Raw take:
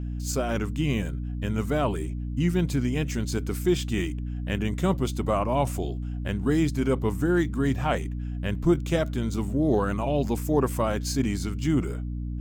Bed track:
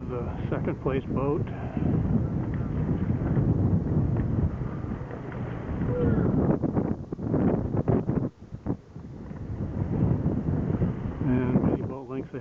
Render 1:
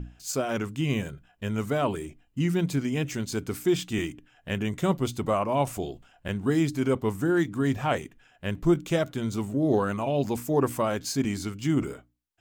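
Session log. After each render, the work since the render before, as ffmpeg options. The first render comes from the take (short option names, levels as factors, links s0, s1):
-af "bandreject=f=60:t=h:w=6,bandreject=f=120:t=h:w=6,bandreject=f=180:t=h:w=6,bandreject=f=240:t=h:w=6,bandreject=f=300:t=h:w=6"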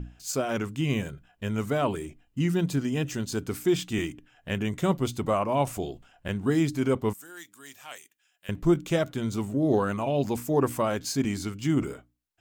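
-filter_complex "[0:a]asettb=1/sr,asplit=3[s0][s1][s2];[s0]atrim=end=2.514[s3];[s1]atrim=start=2.51:end=3.47,asetpts=PTS-STARTPTS,afade=t=in:d=0.004:c=qsin,afade=t=out:st=0.956:d=0.004:c=qsin,bandreject=f=2200:w=7.3[s4];[s2]atrim=start=3.466[s5];[s3][s4]acrossfade=d=0.004:c1=hsin:c2=qsin[s6];[s6][s5]acrossfade=d=0.004:c1=qsin:c2=hsin,asettb=1/sr,asplit=3[s7][s8][s9];[s7]atrim=end=7.134[s10];[s8]atrim=start=7.13:end=8.49,asetpts=PTS-STARTPTS,afade=t=in:d=0.004:c=qsin,afade=t=out:st=1.356:d=0.004:c=qsin,aderivative[s11];[s9]atrim=start=8.486[s12];[s10][s11]acrossfade=d=0.004:c1=hsin:c2=qsin[s13];[s13][s12]acrossfade=d=0.004:c1=qsin:c2=hsin"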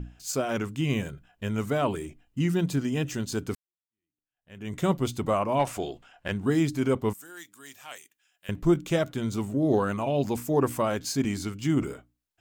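-filter_complex "[0:a]asettb=1/sr,asplit=3[s0][s1][s2];[s0]atrim=end=5.594[s3];[s1]atrim=start=5.59:end=6.32,asetpts=PTS-STARTPTS,afade=t=in:d=0.004:c=qsin,afade=t=out:st=0.726:d=0.004:c=qsin,asplit=2[s4][s5];[s5]highpass=f=720:p=1,volume=3.16,asoftclip=type=tanh:threshold=0.224[s6];[s4][s6]amix=inputs=2:normalize=0,lowpass=f=4000:p=1,volume=0.501[s7];[s2]atrim=start=6.316[s8];[s3][s7]acrossfade=d=0.004:c1=hsin:c2=qsin[s9];[s9][s8]acrossfade=d=0.004:c1=qsin:c2=hsin,asplit=2[s10][s11];[s10]atrim=end=3.55,asetpts=PTS-STARTPTS,afade=t=out:st=3.546:d=0.004:c=hsin[s12];[s11]atrim=start=3.55,asetpts=PTS-STARTPTS,afade=t=in:d=1.2:c=exp[s13];[s12][s13]concat=n=2:v=0:a=1"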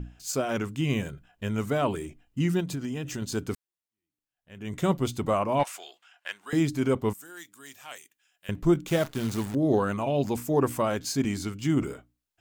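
-filter_complex "[0:a]asettb=1/sr,asplit=3[s0][s1][s2];[s0]atrim=end=2.604[s3];[s1]atrim=start=2.6:end=3.22,asetpts=PTS-STARTPTS,afade=t=in:d=0.004:c=qsin,afade=t=out:st=0.616:d=0.004:c=qsin,acompressor=threshold=0.0398:ratio=6:attack=3.2:release=140:knee=1:detection=peak[s4];[s2]atrim=start=3.216[s5];[s3][s4]acrossfade=d=0.004:c1=hsin:c2=qsin[s6];[s6][s5]acrossfade=d=0.004:c1=qsin:c2=hsin,asettb=1/sr,asplit=3[s7][s8][s9];[s7]atrim=end=5.634[s10];[s8]atrim=start=5.63:end=6.53,asetpts=PTS-STARTPTS,afade=t=in:d=0.004:c=qsin,afade=t=out:st=0.896:d=0.004:c=qsin,highpass=1300[s11];[s9]atrim=start=6.526[s12];[s10][s11]acrossfade=d=0.004:c1=hsin:c2=qsin[s13];[s13][s12]acrossfade=d=0.004:c1=qsin:c2=hsin,asettb=1/sr,asplit=3[s14][s15][s16];[s14]atrim=end=8.884[s17];[s15]atrim=start=8.88:end=9.55,asetpts=PTS-STARTPTS,afade=t=in:d=0.004:c=qsin,afade=t=out:st=0.666:d=0.004:c=qsin,acrusher=bits=7:dc=4:mix=0:aa=0.000001[s18];[s16]atrim=start=9.546[s19];[s17][s18]acrossfade=d=0.004:c1=hsin:c2=qsin[s20];[s20][s19]acrossfade=d=0.004:c1=qsin:c2=hsin"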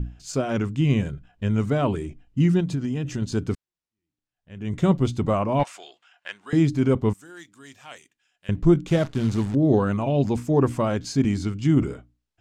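-af "lowpass=6800,lowshelf=f=280:g=10"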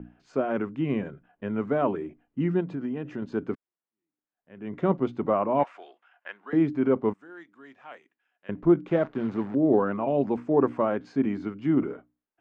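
-filter_complex "[0:a]lowpass=4300,acrossover=split=210 2100:gain=0.0631 1 0.1[s0][s1][s2];[s0][s1][s2]amix=inputs=3:normalize=0"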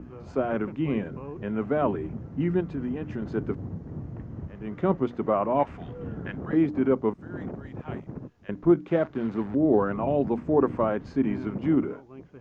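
-filter_complex "[1:a]volume=0.251[s0];[0:a][s0]amix=inputs=2:normalize=0"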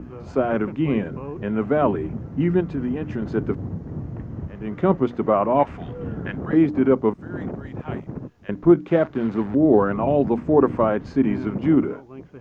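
-af "volume=1.88"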